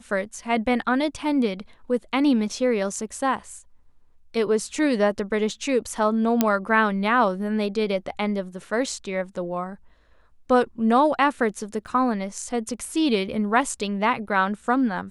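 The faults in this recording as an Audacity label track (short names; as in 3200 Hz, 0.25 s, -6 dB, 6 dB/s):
6.410000	6.410000	pop -4 dBFS
11.870000	11.870000	gap 4 ms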